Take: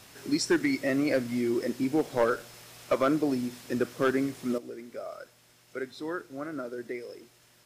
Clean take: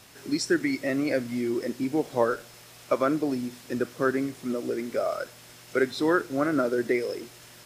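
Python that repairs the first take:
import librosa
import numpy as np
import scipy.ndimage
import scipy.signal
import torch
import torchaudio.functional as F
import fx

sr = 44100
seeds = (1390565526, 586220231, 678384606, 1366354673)

y = fx.fix_declip(x, sr, threshold_db=-17.5)
y = fx.gain(y, sr, db=fx.steps((0.0, 0.0), (4.58, 11.5)))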